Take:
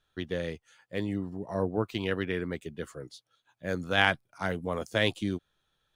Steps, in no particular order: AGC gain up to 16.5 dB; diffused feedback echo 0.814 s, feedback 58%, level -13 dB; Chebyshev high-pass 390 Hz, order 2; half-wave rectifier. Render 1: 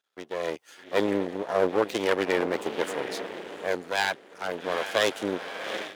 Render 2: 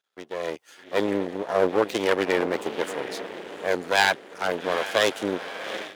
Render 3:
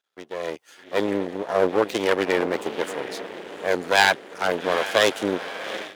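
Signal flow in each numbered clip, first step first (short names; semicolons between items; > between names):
diffused feedback echo > AGC > half-wave rectifier > Chebyshev high-pass; diffused feedback echo > half-wave rectifier > AGC > Chebyshev high-pass; diffused feedback echo > half-wave rectifier > Chebyshev high-pass > AGC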